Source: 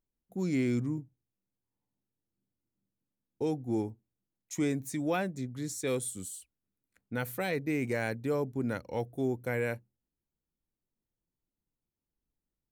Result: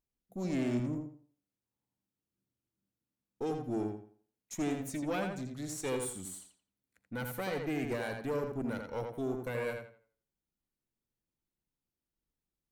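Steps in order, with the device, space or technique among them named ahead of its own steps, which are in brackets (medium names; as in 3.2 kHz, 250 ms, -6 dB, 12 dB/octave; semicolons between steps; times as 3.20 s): rockabilly slapback (valve stage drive 27 dB, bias 0.6; tape echo 84 ms, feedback 31%, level -3.5 dB, low-pass 4.3 kHz)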